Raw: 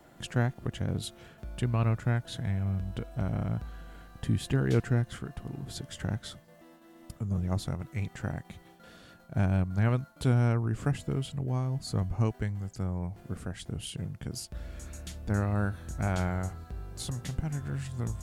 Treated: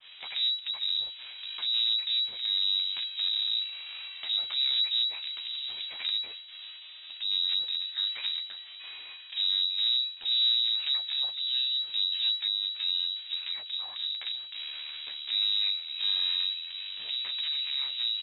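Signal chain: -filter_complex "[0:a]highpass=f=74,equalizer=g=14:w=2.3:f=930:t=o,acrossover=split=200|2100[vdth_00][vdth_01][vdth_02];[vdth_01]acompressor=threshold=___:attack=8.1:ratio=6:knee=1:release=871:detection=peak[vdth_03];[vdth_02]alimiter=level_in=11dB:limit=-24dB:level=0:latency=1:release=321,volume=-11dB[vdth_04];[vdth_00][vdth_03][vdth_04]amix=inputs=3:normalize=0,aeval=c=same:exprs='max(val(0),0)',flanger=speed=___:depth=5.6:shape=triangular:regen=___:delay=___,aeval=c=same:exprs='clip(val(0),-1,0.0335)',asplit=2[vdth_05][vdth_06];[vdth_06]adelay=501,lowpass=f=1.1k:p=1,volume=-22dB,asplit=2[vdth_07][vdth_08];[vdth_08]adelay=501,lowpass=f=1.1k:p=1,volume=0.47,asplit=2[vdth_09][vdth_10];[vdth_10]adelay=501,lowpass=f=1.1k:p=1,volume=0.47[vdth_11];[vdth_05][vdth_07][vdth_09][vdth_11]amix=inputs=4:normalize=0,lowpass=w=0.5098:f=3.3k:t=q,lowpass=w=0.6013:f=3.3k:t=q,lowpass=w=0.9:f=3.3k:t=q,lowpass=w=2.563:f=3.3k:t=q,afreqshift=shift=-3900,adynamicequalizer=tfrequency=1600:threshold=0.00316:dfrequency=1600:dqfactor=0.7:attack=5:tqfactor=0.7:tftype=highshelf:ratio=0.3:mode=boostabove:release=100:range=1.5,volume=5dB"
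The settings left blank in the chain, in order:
-35dB, 1.6, -31, 8.1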